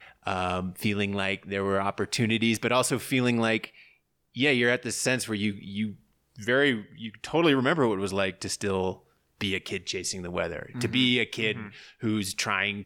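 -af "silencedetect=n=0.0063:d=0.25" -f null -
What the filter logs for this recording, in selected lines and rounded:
silence_start: 3.83
silence_end: 4.35 | silence_duration: 0.52
silence_start: 5.95
silence_end: 6.36 | silence_duration: 0.41
silence_start: 8.96
silence_end: 9.41 | silence_duration: 0.45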